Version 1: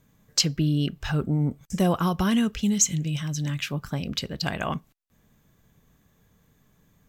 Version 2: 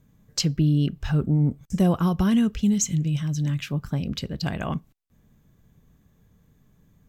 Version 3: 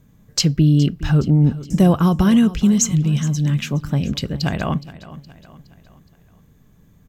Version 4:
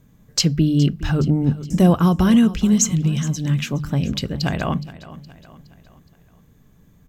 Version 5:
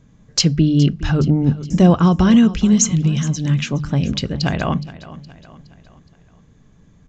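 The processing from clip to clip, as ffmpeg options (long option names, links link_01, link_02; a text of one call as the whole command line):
ffmpeg -i in.wav -af "lowshelf=frequency=390:gain=9.5,volume=-4.5dB" out.wav
ffmpeg -i in.wav -af "aecho=1:1:417|834|1251|1668:0.141|0.0664|0.0312|0.0147,volume=6.5dB" out.wav
ffmpeg -i in.wav -af "bandreject=frequency=50:width_type=h:width=6,bandreject=frequency=100:width_type=h:width=6,bandreject=frequency=150:width_type=h:width=6,bandreject=frequency=200:width_type=h:width=6" out.wav
ffmpeg -i in.wav -af "aresample=16000,aresample=44100,volume=2.5dB" out.wav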